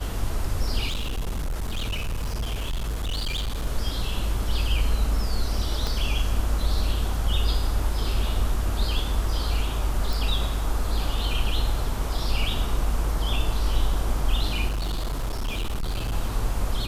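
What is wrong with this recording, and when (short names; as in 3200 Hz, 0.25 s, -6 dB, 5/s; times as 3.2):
0.87–3.67 clipped -24 dBFS
5.87 pop
10.13 pop
14.68–16.14 clipped -23.5 dBFS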